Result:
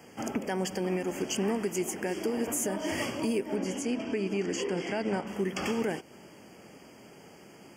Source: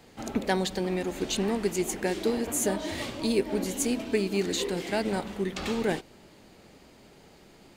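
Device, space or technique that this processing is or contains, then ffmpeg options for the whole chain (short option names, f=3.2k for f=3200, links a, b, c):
PA system with an anti-feedback notch: -filter_complex "[0:a]highpass=120,asuperstop=centerf=3900:order=20:qfactor=3.1,alimiter=limit=-23.5dB:level=0:latency=1:release=232,asettb=1/sr,asplit=3[a][b][c];[a]atrim=end=3.564[d];[b]atrim=start=3.56:end=5.27,asetpts=PTS-STARTPTS,afade=t=in:d=0.004:c=qsin,afade=t=out:st=1.706:d=0.004:c=qsin,lowpass=5.9k[e];[c]atrim=start=5.266[f];[d][e]acrossfade=d=0.004:c1=hsin:c2=qsin[g];[g][f]acrossfade=d=0.004:c1=qsin:c2=hsin,volume=3dB"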